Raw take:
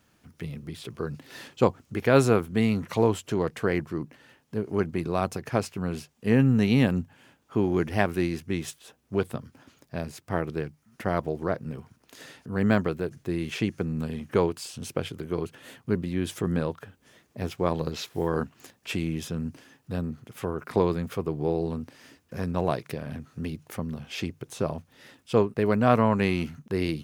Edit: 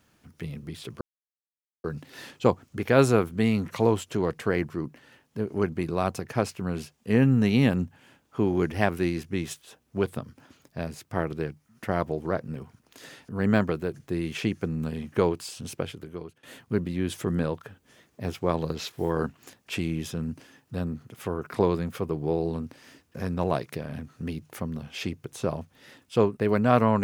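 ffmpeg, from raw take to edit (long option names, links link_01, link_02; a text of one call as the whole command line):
ffmpeg -i in.wav -filter_complex "[0:a]asplit=3[link_01][link_02][link_03];[link_01]atrim=end=1.01,asetpts=PTS-STARTPTS,afade=type=out:start_time=1.006:duration=0.004:curve=hsin,apad=pad_dur=0.83[link_04];[link_02]atrim=start=1.01:end=15.6,asetpts=PTS-STARTPTS,afade=type=in:duration=0.004:curve=hsin,afade=type=out:start_time=13.82:duration=0.77:silence=0.1[link_05];[link_03]atrim=start=15.6,asetpts=PTS-STARTPTS,afade=type=in:duration=0.004:curve=hsin:silence=0.1[link_06];[link_04][link_05][link_06]concat=n=3:v=0:a=1" out.wav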